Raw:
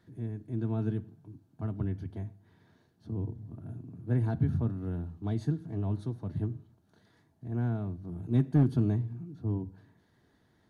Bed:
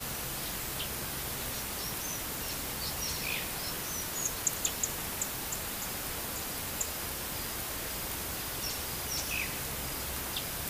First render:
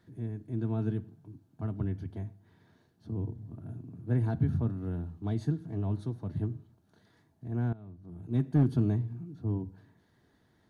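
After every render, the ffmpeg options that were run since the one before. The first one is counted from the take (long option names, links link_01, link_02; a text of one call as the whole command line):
ffmpeg -i in.wav -filter_complex "[0:a]asplit=2[link_01][link_02];[link_01]atrim=end=7.73,asetpts=PTS-STARTPTS,afade=type=out:start_time=7.726:duration=0.004:curve=hsin:silence=0.125893[link_03];[link_02]atrim=start=7.73,asetpts=PTS-STARTPTS,afade=type=in:duration=0.95:silence=0.125893[link_04];[link_03][link_04]concat=n=2:v=0:a=1" out.wav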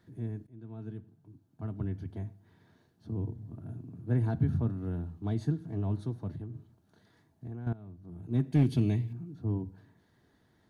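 ffmpeg -i in.wav -filter_complex "[0:a]asettb=1/sr,asplit=3[link_01][link_02][link_03];[link_01]atrim=end=6.324[link_04];[link_02]atrim=start=6.32:end=7.67,asetpts=PTS-STARTPTS,afade=type=in:duration=0.004:curve=qsin,afade=type=out:start_time=1.346:duration=0.004:curve=qsin,acompressor=threshold=-36dB:ratio=12:attack=3.2:release=140:knee=1:detection=peak[link_05];[link_03]atrim=start=7.666[link_06];[link_04][link_05]acrossfade=duration=0.004:curve1=hsin:curve2=qsin[link_07];[link_07][link_06]acrossfade=duration=0.004:curve1=qsin:curve2=hsin,asettb=1/sr,asplit=3[link_08][link_09][link_10];[link_08]atrim=end=8.524[link_11];[link_09]atrim=start=8.52:end=9.13,asetpts=PTS-STARTPTS,afade=type=in:duration=0.004:curve=qsin,afade=type=out:start_time=0.606:duration=0.004:curve=qsin,highshelf=frequency=1800:width_type=q:width=3:gain=7.5[link_12];[link_10]atrim=start=9.126[link_13];[link_11][link_12]acrossfade=duration=0.004:curve1=hsin:curve2=qsin[link_14];[link_14][link_13]acrossfade=duration=0.004:curve1=qsin:curve2=hsin,asplit=2[link_15][link_16];[link_15]atrim=end=0.47,asetpts=PTS-STARTPTS,afade=type=out:start_time=0.466:duration=0.004:curve=hsin:silence=0.1[link_17];[link_16]atrim=start=0.47,asetpts=PTS-STARTPTS,afade=type=in:duration=1.77:silence=0.1[link_18];[link_17][link_18]concat=n=2:v=0:a=1" out.wav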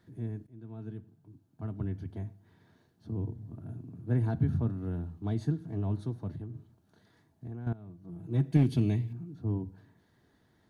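ffmpeg -i in.wav -filter_complex "[0:a]asettb=1/sr,asplit=3[link_01][link_02][link_03];[link_01]atrim=end=7.894[link_04];[link_02]atrim=start=7.89:end=8.57,asetpts=PTS-STARTPTS,afade=type=in:duration=0.004:curve=qsin,afade=type=out:start_time=0.676:duration=0.004:curve=qsin,aecho=1:1:6.1:0.55,atrim=end_sample=29988[link_05];[link_03]atrim=start=8.566[link_06];[link_04][link_05]acrossfade=duration=0.004:curve1=hsin:curve2=qsin[link_07];[link_07][link_06]acrossfade=duration=0.004:curve1=qsin:curve2=hsin" out.wav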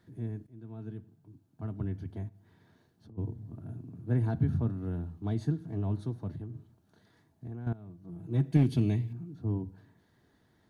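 ffmpeg -i in.wav -filter_complex "[0:a]asplit=3[link_01][link_02][link_03];[link_01]afade=type=out:start_time=2.28:duration=0.02[link_04];[link_02]acompressor=threshold=-50dB:ratio=6:attack=3.2:release=140:knee=1:detection=peak,afade=type=in:start_time=2.28:duration=0.02,afade=type=out:start_time=3.17:duration=0.02[link_05];[link_03]afade=type=in:start_time=3.17:duration=0.02[link_06];[link_04][link_05][link_06]amix=inputs=3:normalize=0" out.wav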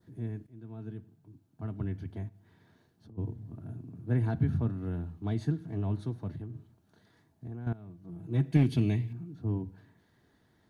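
ffmpeg -i in.wav -af "adynamicequalizer=threshold=0.00112:dfrequency=2300:dqfactor=1.1:tfrequency=2300:tqfactor=1.1:attack=5:release=100:ratio=0.375:range=2.5:mode=boostabove:tftype=bell" out.wav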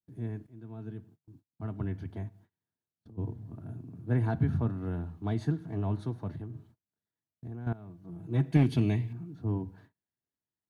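ffmpeg -i in.wav -af "agate=range=-32dB:threshold=-56dB:ratio=16:detection=peak,adynamicequalizer=threshold=0.00355:dfrequency=950:dqfactor=0.77:tfrequency=950:tqfactor=0.77:attack=5:release=100:ratio=0.375:range=2.5:mode=boostabove:tftype=bell" out.wav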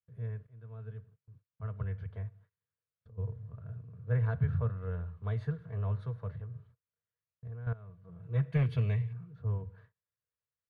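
ffmpeg -i in.wav -af "firequalizer=gain_entry='entry(120,0);entry(310,-28);entry(470,4);entry(790,-14);entry(1100,1);entry(6200,-18)':delay=0.05:min_phase=1" out.wav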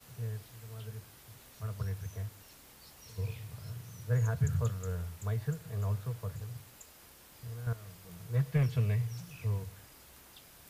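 ffmpeg -i in.wav -i bed.wav -filter_complex "[1:a]volume=-19.5dB[link_01];[0:a][link_01]amix=inputs=2:normalize=0" out.wav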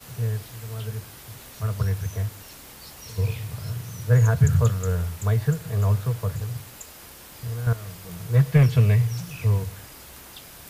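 ffmpeg -i in.wav -af "volume=12dB" out.wav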